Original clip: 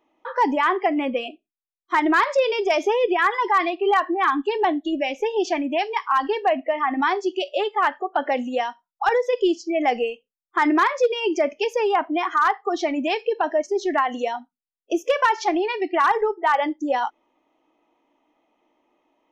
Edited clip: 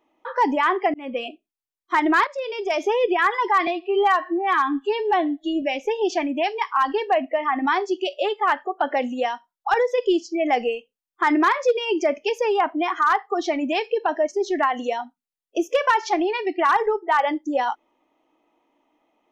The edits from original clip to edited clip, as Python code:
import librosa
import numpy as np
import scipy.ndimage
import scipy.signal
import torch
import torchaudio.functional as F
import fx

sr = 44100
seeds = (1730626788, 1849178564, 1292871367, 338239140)

y = fx.edit(x, sr, fx.fade_in_span(start_s=0.94, length_s=0.29),
    fx.fade_in_from(start_s=2.27, length_s=0.71, floor_db=-15.0),
    fx.stretch_span(start_s=3.67, length_s=1.3, factor=1.5), tone=tone)